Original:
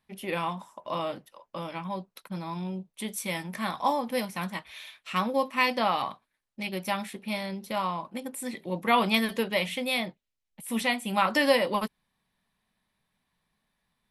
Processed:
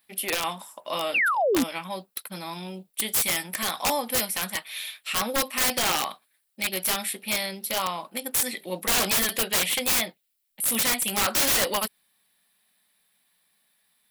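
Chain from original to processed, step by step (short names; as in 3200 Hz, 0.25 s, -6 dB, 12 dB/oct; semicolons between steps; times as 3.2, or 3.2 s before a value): RIAA curve recording; painted sound fall, 1.14–1.64, 230–2900 Hz -26 dBFS; thirty-one-band EQ 125 Hz -6 dB, 1000 Hz -6 dB, 6300 Hz -8 dB; wrapped overs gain 21 dB; gain +4.5 dB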